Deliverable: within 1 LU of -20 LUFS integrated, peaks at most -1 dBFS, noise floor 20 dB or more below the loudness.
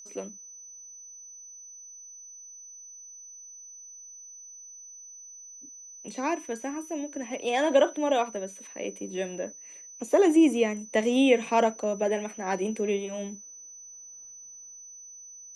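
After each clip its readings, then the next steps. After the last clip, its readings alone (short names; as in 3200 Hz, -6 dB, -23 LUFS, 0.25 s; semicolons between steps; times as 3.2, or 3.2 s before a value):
steady tone 6000 Hz; tone level -44 dBFS; loudness -27.0 LUFS; peak -9.0 dBFS; loudness target -20.0 LUFS
-> notch 6000 Hz, Q 30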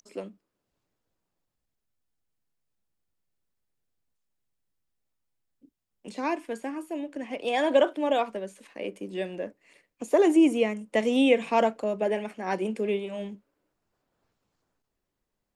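steady tone none; loudness -26.5 LUFS; peak -9.0 dBFS; loudness target -20.0 LUFS
-> gain +6.5 dB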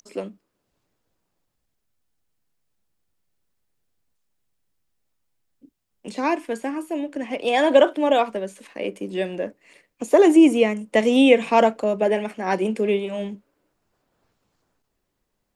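loudness -20.0 LUFS; peak -2.5 dBFS; noise floor -76 dBFS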